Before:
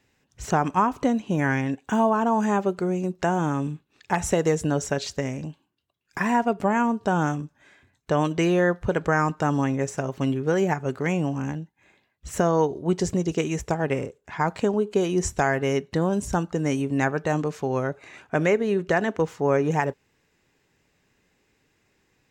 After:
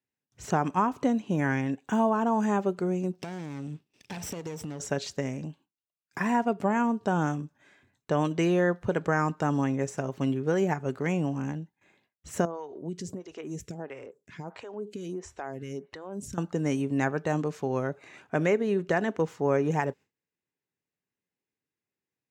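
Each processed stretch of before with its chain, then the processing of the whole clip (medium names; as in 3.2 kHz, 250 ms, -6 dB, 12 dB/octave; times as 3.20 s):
3.13–4.80 s: comb filter that takes the minimum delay 0.37 ms + compression 10:1, threshold -29 dBFS + peaking EQ 4.9 kHz +5.5 dB 1.1 oct
12.45–16.38 s: compression 3:1, threshold -29 dBFS + lamp-driven phase shifter 1.5 Hz
whole clip: high-pass 99 Hz; gate with hold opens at -54 dBFS; peaking EQ 200 Hz +2.5 dB 2.7 oct; trim -5 dB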